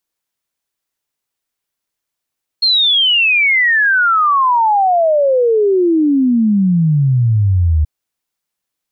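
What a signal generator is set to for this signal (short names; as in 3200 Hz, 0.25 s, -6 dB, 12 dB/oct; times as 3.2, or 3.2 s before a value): log sweep 4300 Hz -> 74 Hz 5.23 s -9 dBFS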